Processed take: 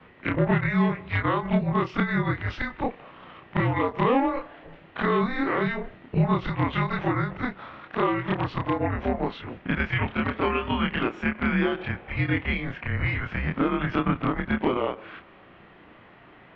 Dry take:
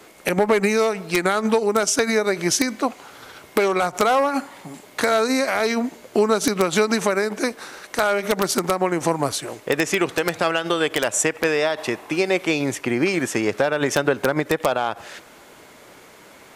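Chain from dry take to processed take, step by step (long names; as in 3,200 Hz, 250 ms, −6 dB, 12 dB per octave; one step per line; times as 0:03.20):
every overlapping window played backwards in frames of 67 ms
single-sideband voice off tune −260 Hz 350–3,300 Hz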